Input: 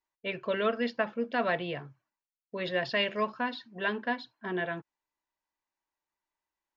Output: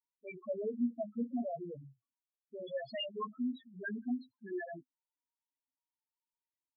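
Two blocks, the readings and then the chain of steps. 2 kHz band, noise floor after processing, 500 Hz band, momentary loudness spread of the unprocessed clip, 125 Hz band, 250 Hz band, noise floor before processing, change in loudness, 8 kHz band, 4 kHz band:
-15.0 dB, under -85 dBFS, -8.5 dB, 9 LU, -10.0 dB, -1.5 dB, under -85 dBFS, -7.5 dB, n/a, -10.5 dB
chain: small resonant body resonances 260/3400 Hz, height 10 dB, ringing for 60 ms; loudest bins only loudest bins 2; gain -4.5 dB

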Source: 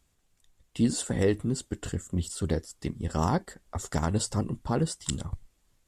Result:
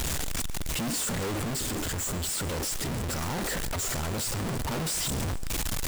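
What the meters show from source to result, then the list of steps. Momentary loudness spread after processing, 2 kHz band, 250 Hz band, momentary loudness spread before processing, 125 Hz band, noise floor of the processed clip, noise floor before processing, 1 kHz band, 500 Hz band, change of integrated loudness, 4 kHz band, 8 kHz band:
3 LU, +7.0 dB, -4.0 dB, 11 LU, -2.5 dB, -31 dBFS, -71 dBFS, -0.5 dB, -3.5 dB, +0.5 dB, +7.5 dB, +7.0 dB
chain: infinite clipping; vocal rider 2 s; on a send: thinning echo 0.141 s, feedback 60%, level -17 dB

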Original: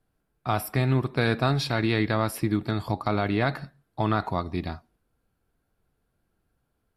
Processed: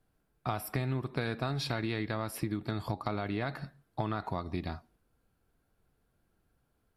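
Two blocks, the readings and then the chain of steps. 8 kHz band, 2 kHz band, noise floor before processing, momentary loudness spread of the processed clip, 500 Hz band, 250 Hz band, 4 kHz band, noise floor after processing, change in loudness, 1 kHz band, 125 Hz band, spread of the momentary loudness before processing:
-6.5 dB, -9.5 dB, -76 dBFS, 6 LU, -9.0 dB, -9.0 dB, -8.0 dB, -76 dBFS, -9.0 dB, -8.5 dB, -8.5 dB, 10 LU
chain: compressor, threshold -30 dBFS, peak gain reduction 11.5 dB

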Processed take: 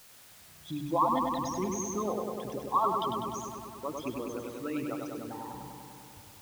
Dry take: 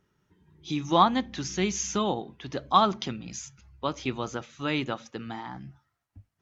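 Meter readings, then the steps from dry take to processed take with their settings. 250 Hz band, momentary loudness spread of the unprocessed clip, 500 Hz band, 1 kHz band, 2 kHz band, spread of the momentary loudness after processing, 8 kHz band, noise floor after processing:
-4.5 dB, 17 LU, -2.5 dB, -3.5 dB, -12.0 dB, 21 LU, n/a, -54 dBFS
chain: formant sharpening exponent 3; requantised 8-bit, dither triangular; darkening echo 99 ms, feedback 79%, low-pass 4200 Hz, level -4 dB; gain -7 dB

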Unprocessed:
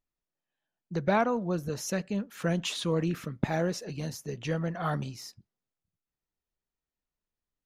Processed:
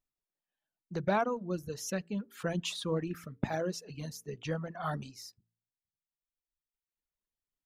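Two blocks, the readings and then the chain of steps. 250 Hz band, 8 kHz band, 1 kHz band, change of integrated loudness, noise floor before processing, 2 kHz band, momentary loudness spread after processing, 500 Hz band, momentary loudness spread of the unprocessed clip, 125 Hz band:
-5.5 dB, -3.5 dB, -3.5 dB, -4.5 dB, under -85 dBFS, -4.5 dB, 11 LU, -4.0 dB, 10 LU, -6.0 dB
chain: de-hum 56.55 Hz, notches 8; reverb removal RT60 1.7 s; dynamic EQ 2100 Hz, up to -5 dB, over -57 dBFS, Q 6.9; gain -3 dB

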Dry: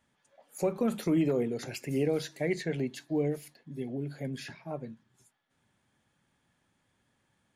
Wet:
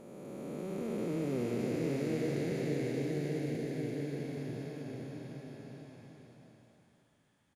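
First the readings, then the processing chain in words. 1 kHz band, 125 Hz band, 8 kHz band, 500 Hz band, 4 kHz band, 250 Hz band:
-5.0 dB, -1.0 dB, -6.0 dB, -4.0 dB, -6.0 dB, -3.5 dB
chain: time blur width 1.13 s; bouncing-ball echo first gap 0.65 s, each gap 0.7×, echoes 5

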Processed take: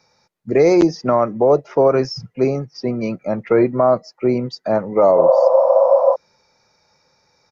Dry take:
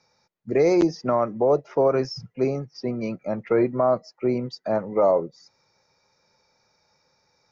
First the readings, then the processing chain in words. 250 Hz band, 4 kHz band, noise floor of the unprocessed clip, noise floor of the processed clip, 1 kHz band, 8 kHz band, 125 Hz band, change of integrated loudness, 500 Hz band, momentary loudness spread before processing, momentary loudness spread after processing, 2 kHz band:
+6.0 dB, +6.0 dB, -69 dBFS, -63 dBFS, +8.0 dB, n/a, +6.0 dB, +7.0 dB, +8.5 dB, 9 LU, 11 LU, +6.0 dB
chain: downsampling 32000 Hz; spectral repair 5.19–6.13, 510–1900 Hz before; gain +6 dB

